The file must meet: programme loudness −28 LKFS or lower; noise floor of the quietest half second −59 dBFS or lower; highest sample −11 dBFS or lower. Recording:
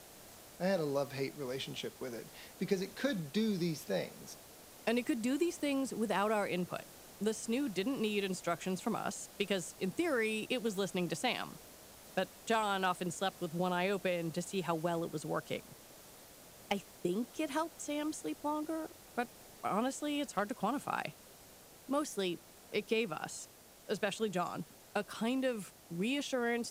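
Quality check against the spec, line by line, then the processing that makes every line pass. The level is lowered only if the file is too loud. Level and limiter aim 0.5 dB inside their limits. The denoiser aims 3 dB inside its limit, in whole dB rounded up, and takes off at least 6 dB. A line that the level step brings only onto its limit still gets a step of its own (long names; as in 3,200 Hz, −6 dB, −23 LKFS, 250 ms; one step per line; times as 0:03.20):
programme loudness −37.0 LKFS: in spec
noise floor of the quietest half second −57 dBFS: out of spec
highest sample −19.0 dBFS: in spec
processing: broadband denoise 6 dB, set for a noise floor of −57 dBFS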